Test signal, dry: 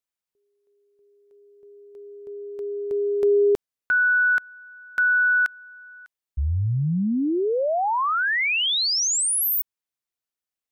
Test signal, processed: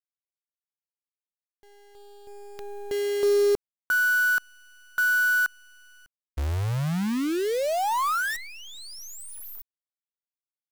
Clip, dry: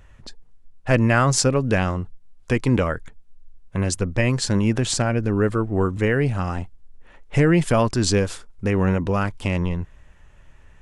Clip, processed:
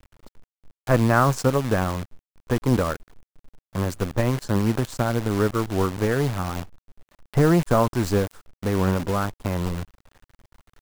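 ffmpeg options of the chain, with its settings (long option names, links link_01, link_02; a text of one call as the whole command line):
ffmpeg -i in.wav -af "aeval=exprs='0.794*(cos(1*acos(clip(val(0)/0.794,-1,1)))-cos(1*PI/2))+0.0447*(cos(7*acos(clip(val(0)/0.794,-1,1)))-cos(7*PI/2))':channel_layout=same,highshelf=frequency=1800:width_type=q:width=1.5:gain=-10,acrusher=bits=6:dc=4:mix=0:aa=0.000001" out.wav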